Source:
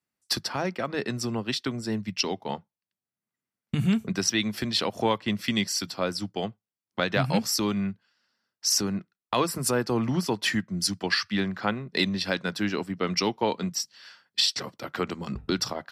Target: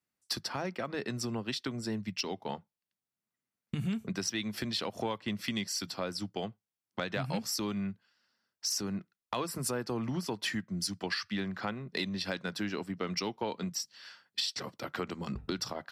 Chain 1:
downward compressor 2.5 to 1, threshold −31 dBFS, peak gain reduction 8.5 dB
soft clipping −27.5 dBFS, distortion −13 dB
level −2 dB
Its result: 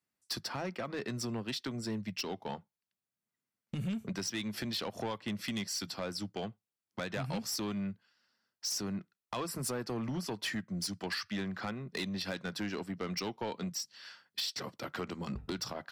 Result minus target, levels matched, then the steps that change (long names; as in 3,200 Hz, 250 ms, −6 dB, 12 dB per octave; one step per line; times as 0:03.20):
soft clipping: distortion +15 dB
change: soft clipping −16.5 dBFS, distortion −29 dB